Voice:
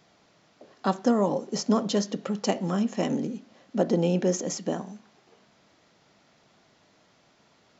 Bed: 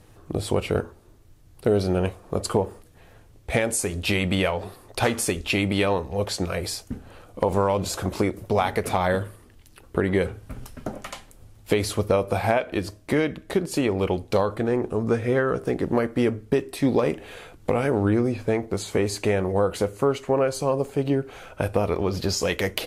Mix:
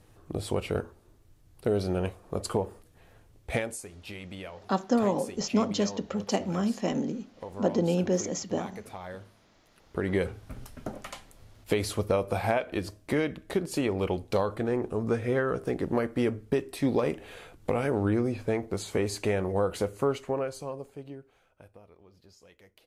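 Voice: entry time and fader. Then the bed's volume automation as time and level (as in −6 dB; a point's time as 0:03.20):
3.85 s, −2.0 dB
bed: 0:03.56 −6 dB
0:03.88 −18.5 dB
0:09.62 −18.5 dB
0:10.10 −5 dB
0:20.13 −5 dB
0:21.93 −32.5 dB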